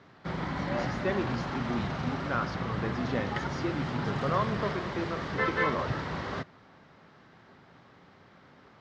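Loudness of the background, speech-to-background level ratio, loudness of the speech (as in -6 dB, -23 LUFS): -33.5 LUFS, -2.0 dB, -35.5 LUFS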